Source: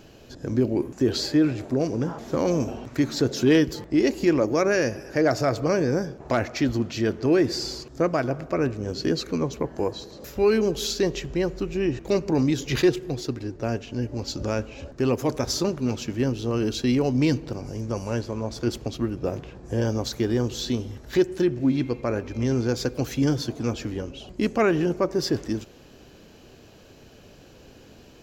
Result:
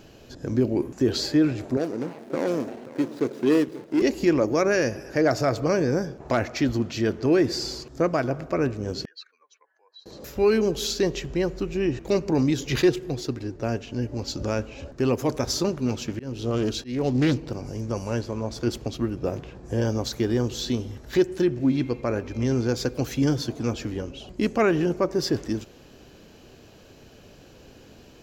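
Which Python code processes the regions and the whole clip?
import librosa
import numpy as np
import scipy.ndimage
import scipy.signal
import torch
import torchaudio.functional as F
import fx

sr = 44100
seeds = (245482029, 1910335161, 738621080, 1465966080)

y = fx.chain(x, sr, fx.median_filter(points=41),
    fx.highpass(hz=250.0, slope=12),
    fx.echo_single(ms=532, db=-16.0), at=(1.77, 4.02))
y = fx.chain(y, sr, fx.spec_expand(power=1.7),
    fx.ladder_highpass(hz=1400.0, resonance_pct=45),
    fx.air_absorb(metres=69.0), at=(9.05, 10.06))
y = fx.chain(y, sr, fx.auto_swell(attack_ms=234.0),
    fx.doppler_dist(depth_ms=0.29), at=(16.08, 17.47))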